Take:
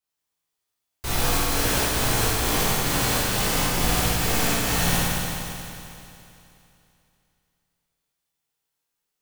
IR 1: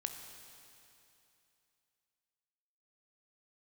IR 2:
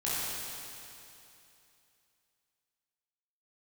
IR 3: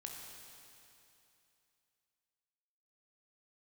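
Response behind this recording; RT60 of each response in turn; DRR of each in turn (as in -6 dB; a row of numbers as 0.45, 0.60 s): 2; 2.8, 2.8, 2.8 s; 5.0, -10.0, 0.0 dB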